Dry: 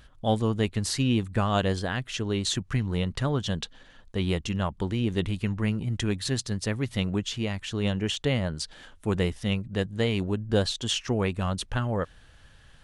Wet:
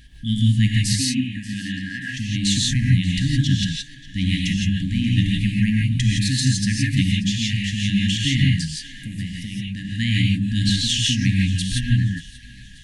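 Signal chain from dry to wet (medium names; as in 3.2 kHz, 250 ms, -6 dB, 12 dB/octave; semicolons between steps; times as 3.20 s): FFT band-reject 300–1600 Hz; 0.96–2.17 s: three-band isolator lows -17 dB, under 260 Hz, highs -15 dB, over 2.1 kHz; 8.60–9.88 s: compression, threshold -34 dBFS, peak gain reduction 11.5 dB; thinning echo 584 ms, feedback 47%, high-pass 420 Hz, level -19 dB; gated-style reverb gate 190 ms rising, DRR -2.5 dB; trim +5 dB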